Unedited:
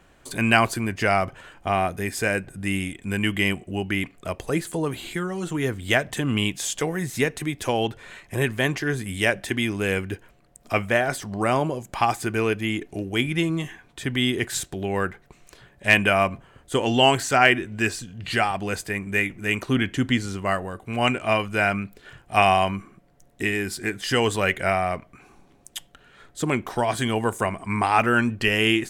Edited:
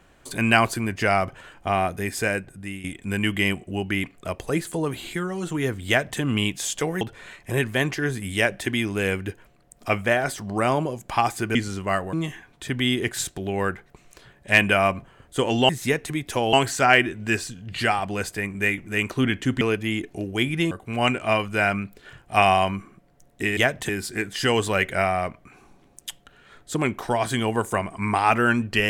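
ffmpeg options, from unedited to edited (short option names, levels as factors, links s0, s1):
-filter_complex "[0:a]asplit=11[s0][s1][s2][s3][s4][s5][s6][s7][s8][s9][s10];[s0]atrim=end=2.84,asetpts=PTS-STARTPTS,afade=t=out:st=2.23:d=0.61:silence=0.211349[s11];[s1]atrim=start=2.84:end=7.012,asetpts=PTS-STARTPTS,afade=t=in:d=0.004:c=hsin:silence=0.211349[s12];[s2]atrim=start=7.848:end=12.392[s13];[s3]atrim=start=20.128:end=20.712[s14];[s4]atrim=start=13.488:end=17.052[s15];[s5]atrim=start=7.008:end=7.852[s16];[s6]atrim=start=17.048:end=20.132[s17];[s7]atrim=start=12.388:end=13.492[s18];[s8]atrim=start=20.708:end=23.572[s19];[s9]atrim=start=5.878:end=6.202[s20];[s10]atrim=start=23.568[s21];[s11][s12]concat=n=2:v=0:a=1[s22];[s22][s13]acrossfade=d=0.004:c1=hsin:c2=hsin[s23];[s23][s14]acrossfade=d=0.004:c1=hsin:c2=hsin[s24];[s24][s15]acrossfade=d=0.004:c1=hsin:c2=hsin[s25];[s25][s16]acrossfade=d=0.004:c1=hsin:c2=hsin[s26];[s26][s17]acrossfade=d=0.004:c1=hsin:c2=hsin[s27];[s27][s18]acrossfade=d=0.004:c1=hsin:c2=hsin[s28];[s28][s19]acrossfade=d=0.004:c1=hsin:c2=hsin[s29];[s29][s20]acrossfade=d=0.004:c1=hsin:c2=hsin[s30];[s30][s21]acrossfade=d=0.004:c1=hsin:c2=hsin"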